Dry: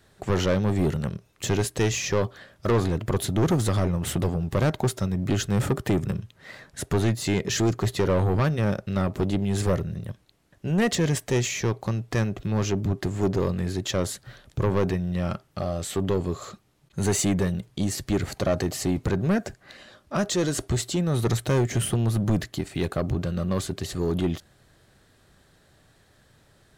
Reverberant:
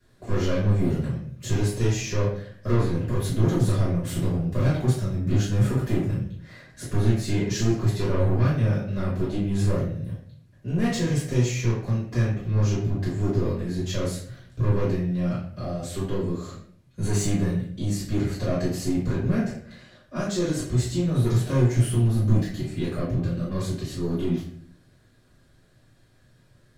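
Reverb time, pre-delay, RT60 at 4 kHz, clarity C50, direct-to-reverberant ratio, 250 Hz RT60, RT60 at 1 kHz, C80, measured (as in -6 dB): 0.55 s, 3 ms, 0.45 s, 3.5 dB, -10.5 dB, 0.80 s, 0.45 s, 7.5 dB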